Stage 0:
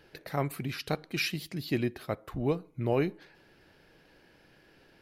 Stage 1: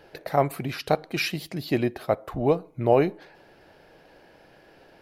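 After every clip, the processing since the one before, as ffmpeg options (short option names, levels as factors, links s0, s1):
-af "equalizer=f=680:w=1.1:g=10,volume=1.41"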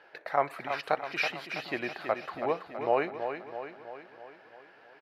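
-filter_complex "[0:a]bandpass=f=1500:t=q:w=1.1:csg=0,asplit=2[s0][s1];[s1]aecho=0:1:327|654|981|1308|1635|1962|2289:0.398|0.223|0.125|0.0699|0.0392|0.0219|0.0123[s2];[s0][s2]amix=inputs=2:normalize=0,volume=1.19"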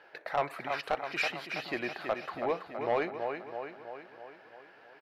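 -af "asoftclip=type=tanh:threshold=0.0944"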